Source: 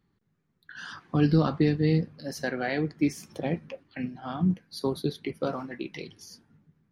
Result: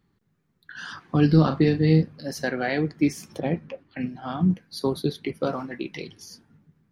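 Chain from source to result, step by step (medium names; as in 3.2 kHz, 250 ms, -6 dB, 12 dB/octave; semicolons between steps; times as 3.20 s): 1.31–2.03 s: doubling 38 ms -9 dB; 3.40–4.01 s: treble shelf 3.7 kHz -8 dB; trim +3.5 dB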